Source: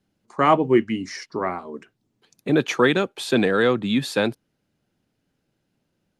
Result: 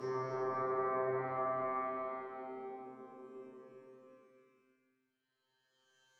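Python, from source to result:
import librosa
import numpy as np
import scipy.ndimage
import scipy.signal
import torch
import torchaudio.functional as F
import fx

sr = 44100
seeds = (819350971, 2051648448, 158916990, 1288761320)

p1 = fx.transient(x, sr, attack_db=3, sustain_db=-11)
p2 = fx.paulstretch(p1, sr, seeds[0], factor=6.9, window_s=0.5, from_s=1.31)
p3 = fx.comb_fb(p2, sr, f0_hz=130.0, decay_s=1.2, harmonics='all', damping=0.0, mix_pct=100)
p4 = p3 + fx.echo_single(p3, sr, ms=357, db=-9.0, dry=0)
p5 = fx.env_lowpass_down(p4, sr, base_hz=2500.0, full_db=-37.5)
y = p5 * 10.0 ** (5.5 / 20.0)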